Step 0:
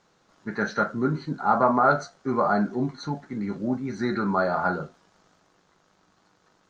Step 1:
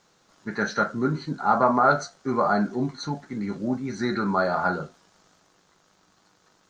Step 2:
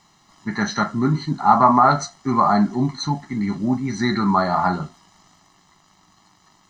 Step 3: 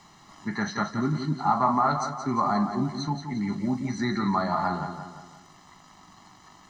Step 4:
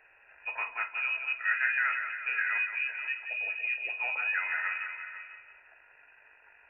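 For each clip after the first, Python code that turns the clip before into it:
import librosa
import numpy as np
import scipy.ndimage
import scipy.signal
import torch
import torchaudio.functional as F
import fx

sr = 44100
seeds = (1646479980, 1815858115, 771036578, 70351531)

y1 = fx.high_shelf(x, sr, hz=3700.0, db=8.0)
y2 = y1 + 0.82 * np.pad(y1, (int(1.0 * sr / 1000.0), 0))[:len(y1)]
y2 = y2 * librosa.db_to_amplitude(4.0)
y3 = fx.echo_feedback(y2, sr, ms=174, feedback_pct=37, wet_db=-9.0)
y3 = fx.band_squash(y3, sr, depth_pct=40)
y3 = y3 * librosa.db_to_amplitude(-7.5)
y4 = fx.freq_invert(y3, sr, carrier_hz=2700)
y4 = y4 + 10.0 ** (-12.5 / 20.0) * np.pad(y4, (int(492 * sr / 1000.0), 0))[:len(y4)]
y4 = y4 * librosa.db_to_amplitude(-6.0)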